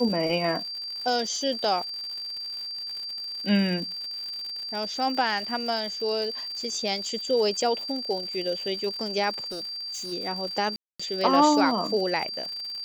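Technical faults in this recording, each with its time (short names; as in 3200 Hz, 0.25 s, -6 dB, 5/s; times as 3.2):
crackle 140/s -34 dBFS
tone 4700 Hz -32 dBFS
9.51–10.13 clipped -31.5 dBFS
10.76–10.99 gap 0.235 s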